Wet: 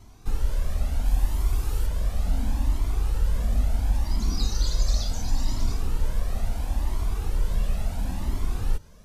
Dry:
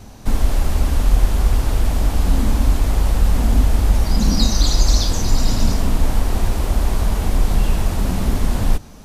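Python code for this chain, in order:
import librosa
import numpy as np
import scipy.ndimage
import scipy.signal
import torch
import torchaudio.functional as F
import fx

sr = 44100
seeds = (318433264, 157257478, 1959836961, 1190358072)

y = fx.high_shelf(x, sr, hz=fx.line((1.04, 11000.0), (1.85, 5900.0)), db=8.0, at=(1.04, 1.85), fade=0.02)
y = fx.comb_cascade(y, sr, direction='rising', hz=0.72)
y = y * 10.0 ** (-7.5 / 20.0)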